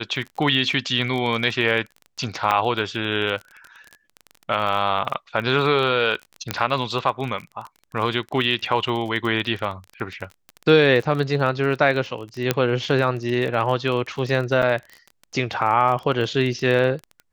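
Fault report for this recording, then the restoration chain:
surface crackle 25 per second −28 dBFS
0:02.51: drop-out 2.8 ms
0:06.51: click −6 dBFS
0:12.51: click −3 dBFS
0:14.62–0:14.63: drop-out 5.8 ms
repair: click removal
repair the gap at 0:02.51, 2.8 ms
repair the gap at 0:14.62, 5.8 ms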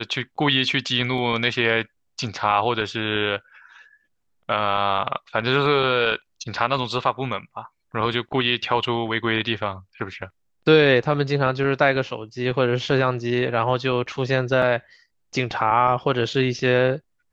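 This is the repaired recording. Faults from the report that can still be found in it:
none of them is left

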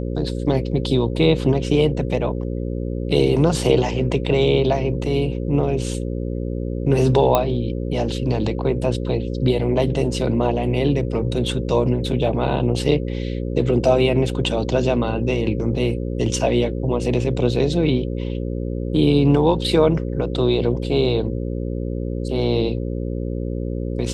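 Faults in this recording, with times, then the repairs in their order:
mains buzz 60 Hz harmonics 9 −25 dBFS
0:07.35: click −4 dBFS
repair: click removal
hum removal 60 Hz, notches 9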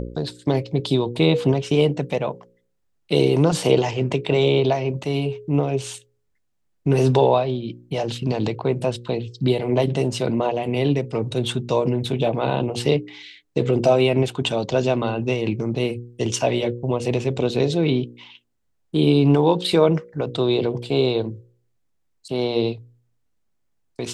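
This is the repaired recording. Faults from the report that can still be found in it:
none of them is left

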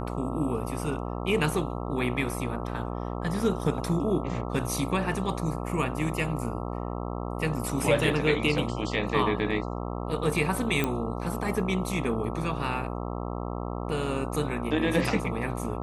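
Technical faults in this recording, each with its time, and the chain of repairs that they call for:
mains buzz 60 Hz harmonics 22 −33 dBFS
0:10.84: click −12 dBFS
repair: click removal
hum removal 60 Hz, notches 22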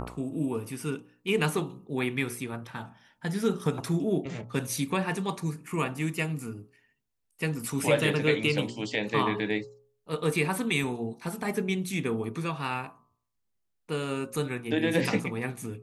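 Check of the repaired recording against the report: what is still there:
none of them is left

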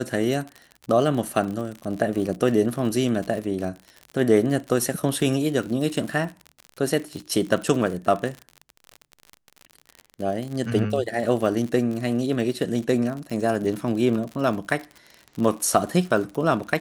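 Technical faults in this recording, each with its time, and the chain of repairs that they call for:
surface crackle 53 per second −29 dBFS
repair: click removal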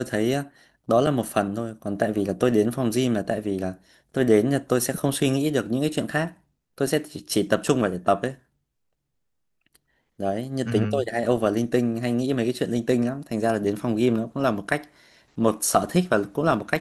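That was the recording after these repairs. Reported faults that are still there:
none of them is left

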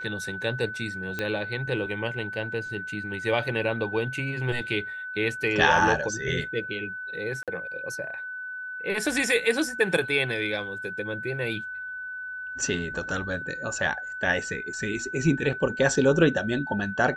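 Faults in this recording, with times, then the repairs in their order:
whistle 1,500 Hz −33 dBFS
0:01.19: click −15 dBFS
0:07.43–0:07.48: drop-out 47 ms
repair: click removal
notch filter 1,500 Hz, Q 30
repair the gap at 0:07.43, 47 ms

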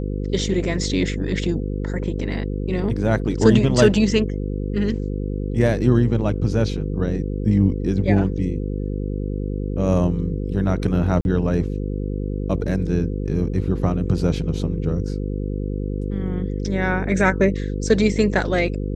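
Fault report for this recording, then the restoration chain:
mains buzz 50 Hz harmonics 10 −25 dBFS
0:11.21–0:11.25: drop-out 41 ms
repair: hum removal 50 Hz, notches 10
repair the gap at 0:11.21, 41 ms

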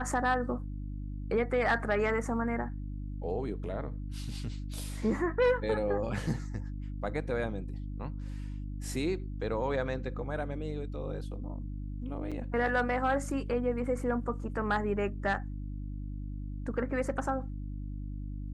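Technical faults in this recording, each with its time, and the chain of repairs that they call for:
mains hum 50 Hz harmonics 6 −38 dBFS
0:12.31–0:12.32: drop-out 6.3 ms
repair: hum removal 50 Hz, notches 6
repair the gap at 0:12.31, 6.3 ms

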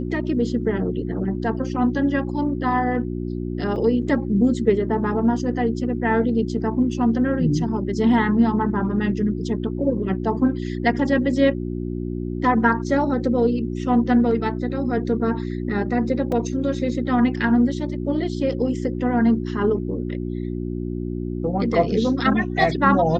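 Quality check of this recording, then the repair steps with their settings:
mains hum 60 Hz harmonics 6 −27 dBFS
0:03.76: drop-out 2.2 ms
0:16.32: drop-out 3.2 ms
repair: hum removal 60 Hz, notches 6
repair the gap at 0:03.76, 2.2 ms
repair the gap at 0:16.32, 3.2 ms

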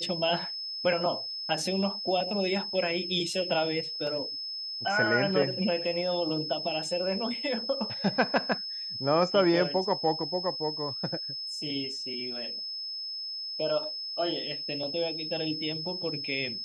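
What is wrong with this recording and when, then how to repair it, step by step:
whistle 5,200 Hz −34 dBFS
0:04.07: drop-out 2.6 ms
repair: notch filter 5,200 Hz, Q 30
repair the gap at 0:04.07, 2.6 ms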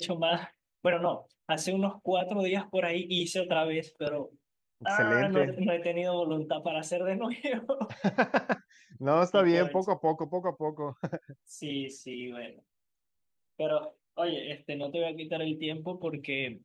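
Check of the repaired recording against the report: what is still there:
none of them is left

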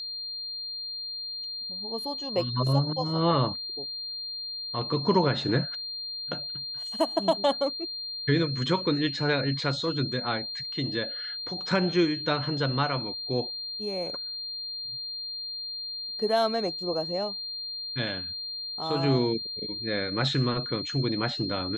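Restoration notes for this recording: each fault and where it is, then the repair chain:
whistle 4,200 Hz −33 dBFS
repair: notch filter 4,200 Hz, Q 30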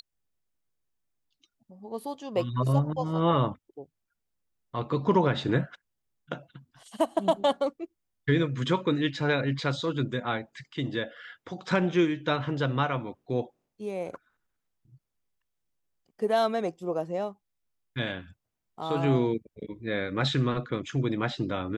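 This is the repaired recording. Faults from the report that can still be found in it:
none of them is left

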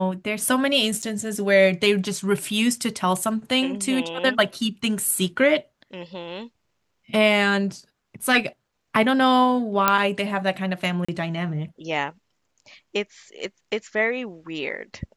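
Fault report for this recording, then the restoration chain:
0:01.02–0:01.03: drop-out 7.5 ms
0:09.88: click −2 dBFS
0:11.05–0:11.09: drop-out 35 ms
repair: click removal
repair the gap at 0:01.02, 7.5 ms
repair the gap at 0:11.05, 35 ms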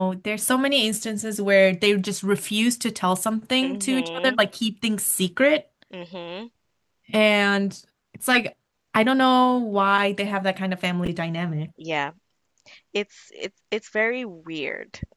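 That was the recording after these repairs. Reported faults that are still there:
none of them is left

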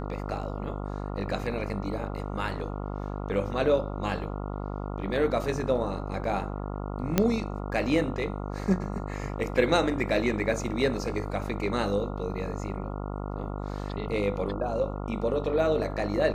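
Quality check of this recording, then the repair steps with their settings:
mains buzz 50 Hz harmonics 28 −34 dBFS
0:07.18: click −7 dBFS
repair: click removal
hum removal 50 Hz, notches 28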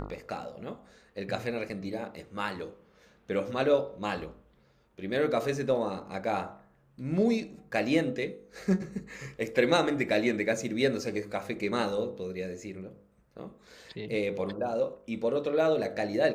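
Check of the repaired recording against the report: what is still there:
none of them is left

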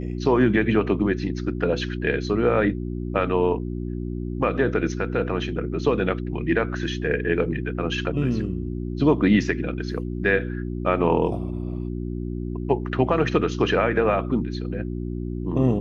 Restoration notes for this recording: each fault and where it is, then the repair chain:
mains hum 60 Hz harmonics 6 −29 dBFS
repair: hum removal 60 Hz, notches 6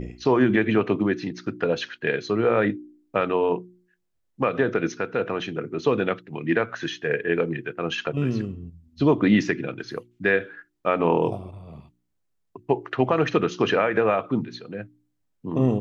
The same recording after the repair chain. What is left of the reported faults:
none of them is left

